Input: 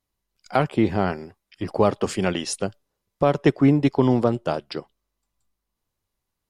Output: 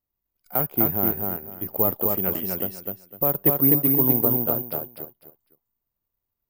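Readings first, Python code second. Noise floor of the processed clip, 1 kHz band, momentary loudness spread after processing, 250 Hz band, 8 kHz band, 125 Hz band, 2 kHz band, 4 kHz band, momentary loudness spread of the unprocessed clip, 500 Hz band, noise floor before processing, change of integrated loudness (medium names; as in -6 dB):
-84 dBFS, -7.0 dB, 14 LU, -5.5 dB, under -10 dB, -5.0 dB, -9.5 dB, under -10 dB, 13 LU, -5.5 dB, -82 dBFS, +1.5 dB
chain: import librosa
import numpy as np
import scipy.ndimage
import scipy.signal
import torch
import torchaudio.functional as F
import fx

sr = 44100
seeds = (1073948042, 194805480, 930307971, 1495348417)

y = fx.high_shelf(x, sr, hz=2200.0, db=-11.5)
y = fx.echo_feedback(y, sr, ms=252, feedback_pct=24, wet_db=-3.0)
y = (np.kron(y[::3], np.eye(3)[0]) * 3)[:len(y)]
y = y * librosa.db_to_amplitude(-7.0)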